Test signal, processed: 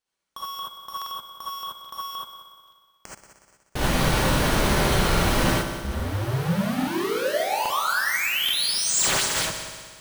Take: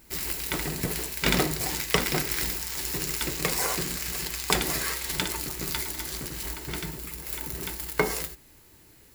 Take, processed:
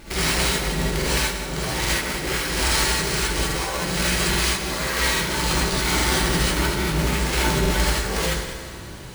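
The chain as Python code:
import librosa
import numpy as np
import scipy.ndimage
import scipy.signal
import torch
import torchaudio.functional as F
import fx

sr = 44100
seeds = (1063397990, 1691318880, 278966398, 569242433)

y = fx.halfwave_hold(x, sr)
y = np.repeat(scipy.signal.resample_poly(y, 1, 3), 3)[:len(y)]
y = fx.over_compress(y, sr, threshold_db=-33.0, ratio=-1.0)
y = fx.echo_heads(y, sr, ms=61, heads='all three', feedback_pct=60, wet_db=-15)
y = fx.rev_gated(y, sr, seeds[0], gate_ms=100, shape='rising', drr_db=-5.5)
y = fx.buffer_crackle(y, sr, first_s=0.97, period_s=0.83, block=2048, kind='repeat')
y = F.gain(torch.from_numpy(y), 2.0).numpy()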